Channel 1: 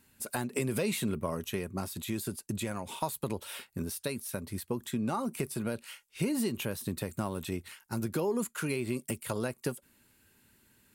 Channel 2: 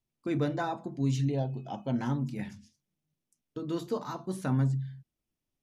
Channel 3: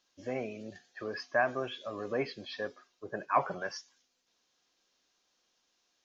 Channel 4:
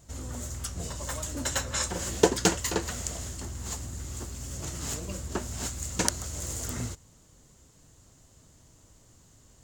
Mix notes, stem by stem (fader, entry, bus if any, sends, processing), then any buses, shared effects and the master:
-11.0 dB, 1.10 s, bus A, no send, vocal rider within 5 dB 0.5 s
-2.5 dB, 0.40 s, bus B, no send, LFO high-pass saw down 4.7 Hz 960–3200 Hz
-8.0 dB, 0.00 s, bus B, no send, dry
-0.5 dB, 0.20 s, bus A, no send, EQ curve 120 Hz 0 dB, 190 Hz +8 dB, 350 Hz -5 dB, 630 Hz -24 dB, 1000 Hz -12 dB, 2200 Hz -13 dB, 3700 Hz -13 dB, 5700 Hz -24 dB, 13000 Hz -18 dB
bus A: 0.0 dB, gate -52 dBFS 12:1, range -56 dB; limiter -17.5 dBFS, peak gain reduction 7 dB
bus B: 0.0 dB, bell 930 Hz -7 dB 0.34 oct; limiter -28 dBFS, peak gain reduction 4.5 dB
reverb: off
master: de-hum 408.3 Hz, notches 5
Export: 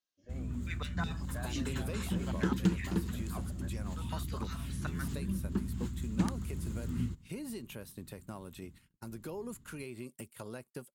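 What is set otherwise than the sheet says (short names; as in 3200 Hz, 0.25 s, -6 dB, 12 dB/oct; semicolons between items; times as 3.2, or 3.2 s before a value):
stem 1: missing vocal rider within 5 dB 0.5 s; stem 3 -8.0 dB -> -18.5 dB; master: missing de-hum 408.3 Hz, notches 5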